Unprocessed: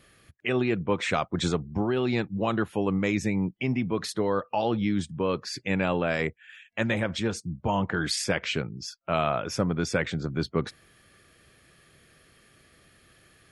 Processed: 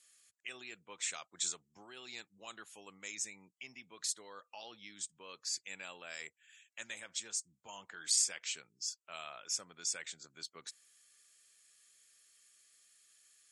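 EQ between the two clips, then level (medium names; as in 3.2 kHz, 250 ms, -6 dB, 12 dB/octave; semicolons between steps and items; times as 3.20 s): band-pass filter 7.5 kHz, Q 3.2; +6.5 dB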